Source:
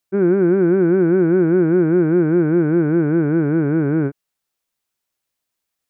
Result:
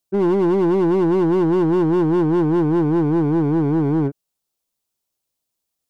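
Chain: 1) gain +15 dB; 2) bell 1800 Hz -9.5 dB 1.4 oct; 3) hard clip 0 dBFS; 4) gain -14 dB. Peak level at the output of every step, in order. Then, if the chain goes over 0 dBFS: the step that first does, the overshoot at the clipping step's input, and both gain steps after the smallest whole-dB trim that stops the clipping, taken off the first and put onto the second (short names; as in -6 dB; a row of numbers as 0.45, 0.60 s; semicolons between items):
+8.0, +7.5, 0.0, -14.0 dBFS; step 1, 7.5 dB; step 1 +7 dB, step 4 -6 dB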